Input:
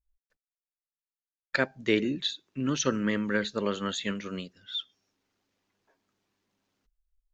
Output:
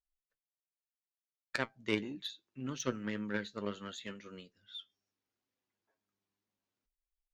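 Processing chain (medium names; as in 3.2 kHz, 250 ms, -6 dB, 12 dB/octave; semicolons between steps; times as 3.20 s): Chebyshev shaper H 3 -15 dB, 5 -44 dB, 7 -34 dB, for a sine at -9 dBFS; flange 0.72 Hz, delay 7.7 ms, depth 2.6 ms, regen +55%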